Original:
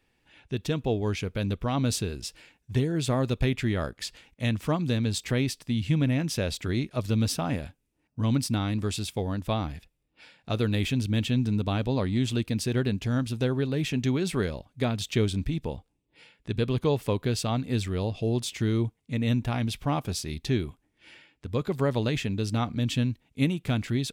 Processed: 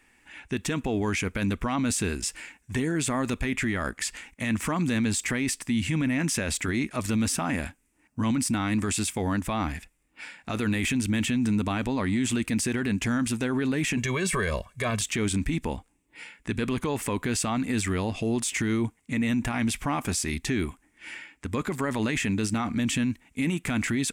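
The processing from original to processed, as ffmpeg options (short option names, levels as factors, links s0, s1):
-filter_complex "[0:a]asettb=1/sr,asplit=3[s0][s1][s2];[s0]atrim=end=13.974[s3];[s1]atrim=start=13.97:end=15.01,asetpts=PTS-STARTPTS,afade=t=in:d=0.004:c=qsin,afade=t=out:st=1.036:d=0.004:c=qsin,aecho=1:1:1.8:0.98,atrim=end_sample=45864[s4];[s2]atrim=start=15.006[s5];[s3][s4]acrossfade=d=0.004:c1=hsin:c2=qsin[s6];[s6][s5]acrossfade=d=0.004:c1=qsin:c2=hsin,equalizer=f=125:t=o:w=1:g=-8,equalizer=f=250:t=o:w=1:g=5,equalizer=f=500:t=o:w=1:g=-5,equalizer=f=1000:t=o:w=1:g=4,equalizer=f=2000:t=o:w=1:g=9,equalizer=f=4000:t=o:w=1:g=-7,equalizer=f=8000:t=o:w=1:g=12,acontrast=82,alimiter=limit=0.133:level=0:latency=1:release=23,volume=0.841"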